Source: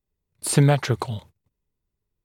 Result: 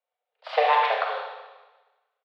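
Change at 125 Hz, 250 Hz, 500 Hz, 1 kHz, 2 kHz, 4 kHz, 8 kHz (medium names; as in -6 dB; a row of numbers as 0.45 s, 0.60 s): under -40 dB, under -40 dB, 0.0 dB, +9.5 dB, +4.0 dB, 0.0 dB, under -35 dB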